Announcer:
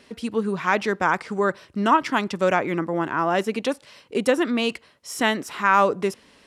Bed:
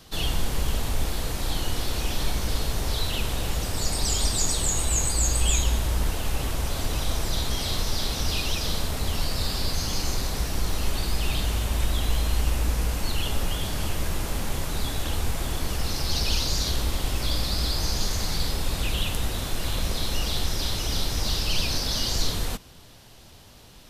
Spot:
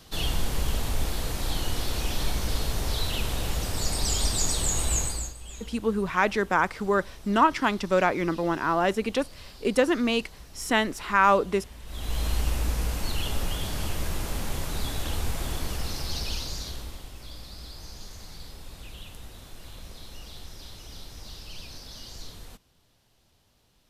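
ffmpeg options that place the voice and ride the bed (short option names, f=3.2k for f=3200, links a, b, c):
-filter_complex "[0:a]adelay=5500,volume=-2dB[a];[1:a]volume=16dB,afade=t=out:st=4.94:d=0.4:silence=0.11885,afade=t=in:st=11.85:d=0.41:silence=0.133352,afade=t=out:st=15.51:d=1.59:silence=0.199526[b];[a][b]amix=inputs=2:normalize=0"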